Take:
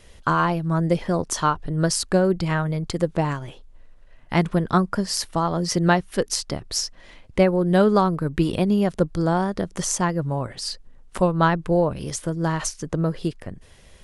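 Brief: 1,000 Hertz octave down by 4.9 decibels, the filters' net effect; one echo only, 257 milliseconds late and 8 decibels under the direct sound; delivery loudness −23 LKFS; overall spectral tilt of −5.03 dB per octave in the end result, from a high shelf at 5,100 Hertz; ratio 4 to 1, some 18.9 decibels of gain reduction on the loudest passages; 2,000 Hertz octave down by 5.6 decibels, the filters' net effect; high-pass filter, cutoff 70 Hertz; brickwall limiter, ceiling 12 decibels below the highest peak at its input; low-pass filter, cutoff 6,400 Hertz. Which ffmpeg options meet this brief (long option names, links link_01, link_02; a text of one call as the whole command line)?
ffmpeg -i in.wav -af "highpass=70,lowpass=6400,equalizer=frequency=1000:width_type=o:gain=-5,equalizer=frequency=2000:width_type=o:gain=-6.5,highshelf=frequency=5100:gain=8.5,acompressor=threshold=-38dB:ratio=4,alimiter=level_in=6.5dB:limit=-24dB:level=0:latency=1,volume=-6.5dB,aecho=1:1:257:0.398,volume=17.5dB" out.wav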